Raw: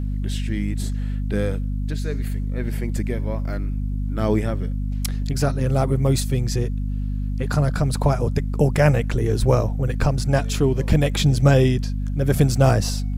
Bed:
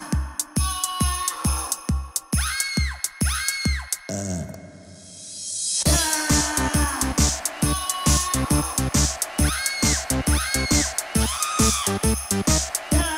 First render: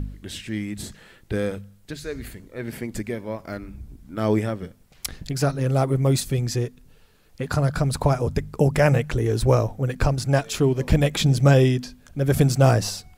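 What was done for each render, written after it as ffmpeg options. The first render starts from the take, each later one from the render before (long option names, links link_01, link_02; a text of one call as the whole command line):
ffmpeg -i in.wav -af "bandreject=frequency=50:width_type=h:width=4,bandreject=frequency=100:width_type=h:width=4,bandreject=frequency=150:width_type=h:width=4,bandreject=frequency=200:width_type=h:width=4,bandreject=frequency=250:width_type=h:width=4" out.wav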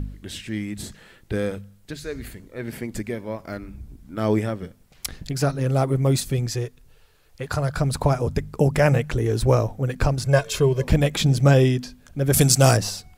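ffmpeg -i in.wav -filter_complex "[0:a]asettb=1/sr,asplit=3[link_01][link_02][link_03];[link_01]atrim=end=6.464[link_04];[link_02]atrim=start=6.46:end=7.8,asetpts=PTS-STARTPTS,afade=type=in:duration=0.004:curve=qsin,afade=type=out:start_time=1.336:duration=0.004:curve=qsin,equalizer=frequency=220:width_type=o:width=0.77:gain=-12[link_05];[link_03]atrim=start=7.796[link_06];[link_04][link_05]acrossfade=duration=0.004:curve1=hsin:curve2=qsin[link_07];[link_07][link_06]acrossfade=duration=0.004:curve1=qsin:curve2=hsin,asettb=1/sr,asplit=3[link_08][link_09][link_10];[link_08]atrim=end=10.234[link_11];[link_09]atrim=start=10.23:end=10.84,asetpts=PTS-STARTPTS,afade=type=in:duration=0.004:curve=qsin,afade=type=out:start_time=0.606:duration=0.004:curve=qsin,aecho=1:1:1.9:0.68,atrim=end_sample=26901[link_12];[link_10]atrim=start=10.836[link_13];[link_11][link_12]acrossfade=duration=0.004:curve1=hsin:curve2=qsin[link_14];[link_14][link_13]acrossfade=duration=0.004:curve1=qsin:curve2=hsin,asettb=1/sr,asplit=3[link_15][link_16][link_17];[link_15]atrim=end=12.334[link_18];[link_16]atrim=start=12.33:end=12.77,asetpts=PTS-STARTPTS,afade=type=in:duration=0.004:curve=qsin,afade=type=out:start_time=0.436:duration=0.004:curve=qsin,equalizer=frequency=9000:width_type=o:width=2.6:gain=14.5[link_19];[link_17]atrim=start=12.766[link_20];[link_18][link_19]acrossfade=duration=0.004:curve1=hsin:curve2=qsin[link_21];[link_21][link_20]acrossfade=duration=0.004:curve1=qsin:curve2=hsin" out.wav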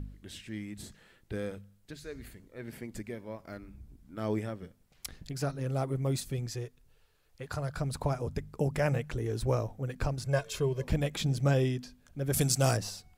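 ffmpeg -i in.wav -af "volume=-11dB" out.wav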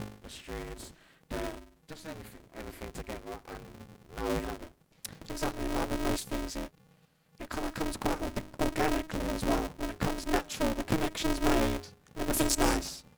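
ffmpeg -i in.wav -af "aeval=exprs='val(0)*sgn(sin(2*PI*160*n/s))':channel_layout=same" out.wav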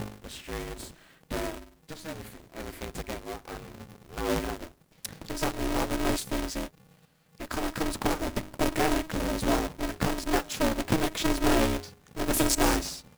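ffmpeg -i in.wav -filter_complex "[0:a]asplit=2[link_01][link_02];[link_02]asoftclip=type=tanh:threshold=-24.5dB,volume=-6.5dB[link_03];[link_01][link_03]amix=inputs=2:normalize=0,acrusher=bits=2:mode=log:mix=0:aa=0.000001" out.wav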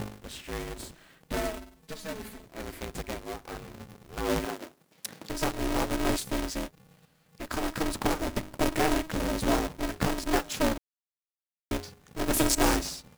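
ffmpeg -i in.wav -filter_complex "[0:a]asettb=1/sr,asplit=3[link_01][link_02][link_03];[link_01]atrim=end=1.334[link_04];[link_02]atrim=start=1.33:end=2.45,asetpts=PTS-STARTPTS,afade=type=in:duration=0.004:curve=qsin,afade=type=out:start_time=1.116:duration=0.004:curve=qsin,aecho=1:1:4.6:0.68,atrim=end_sample=49392[link_05];[link_03]atrim=start=2.446[link_06];[link_04][link_05]acrossfade=duration=0.004:curve1=hsin:curve2=qsin[link_07];[link_07][link_06]acrossfade=duration=0.004:curve1=qsin:curve2=hsin,asettb=1/sr,asplit=3[link_08][link_09][link_10];[link_08]atrim=end=4.454[link_11];[link_09]atrim=start=4.45:end=5.3,asetpts=PTS-STARTPTS,afade=type=in:duration=0.004:curve=qsin,afade=type=out:start_time=0.846:duration=0.004:curve=qsin,highpass=190[link_12];[link_10]atrim=start=5.296[link_13];[link_11][link_12]acrossfade=duration=0.004:curve1=hsin:curve2=qsin[link_14];[link_14][link_13]acrossfade=duration=0.004:curve1=qsin:curve2=hsin,asplit=3[link_15][link_16][link_17];[link_15]atrim=end=10.78,asetpts=PTS-STARTPTS,afade=type=out:start_time=10.776:duration=0.004:curve=hsin[link_18];[link_16]atrim=start=10.78:end=11.71,asetpts=PTS-STARTPTS,volume=0[link_19];[link_17]atrim=start=11.71,asetpts=PTS-STARTPTS,afade=type=in:duration=0.004:curve=hsin[link_20];[link_18][link_19][link_20]concat=n=3:v=0:a=1" out.wav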